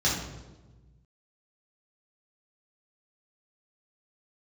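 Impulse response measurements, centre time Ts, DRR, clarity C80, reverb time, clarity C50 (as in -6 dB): 51 ms, -7.0 dB, 6.0 dB, 1.2 s, 3.0 dB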